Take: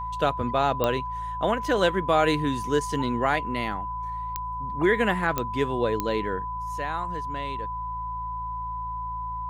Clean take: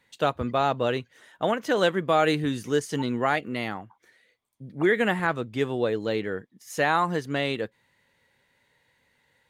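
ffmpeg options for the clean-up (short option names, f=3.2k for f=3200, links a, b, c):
-af "adeclick=t=4,bandreject=f=55.6:t=h:w=4,bandreject=f=111.2:t=h:w=4,bandreject=f=166.8:t=h:w=4,bandreject=f=1k:w=30,asetnsamples=n=441:p=0,asendcmd='6.49 volume volume 10dB',volume=0dB"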